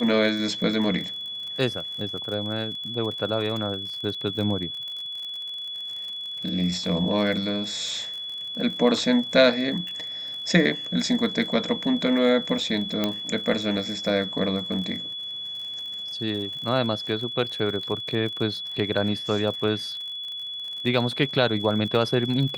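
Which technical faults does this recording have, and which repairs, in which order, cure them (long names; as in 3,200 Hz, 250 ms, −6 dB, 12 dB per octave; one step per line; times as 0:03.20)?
surface crackle 49 per second −33 dBFS
whistle 3,400 Hz −31 dBFS
0:13.04: click −10 dBFS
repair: click removal
notch filter 3,400 Hz, Q 30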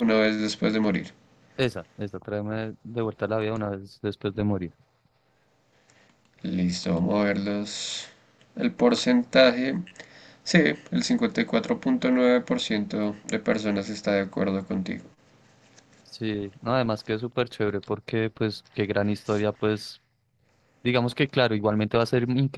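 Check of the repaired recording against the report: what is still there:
0:13.04: click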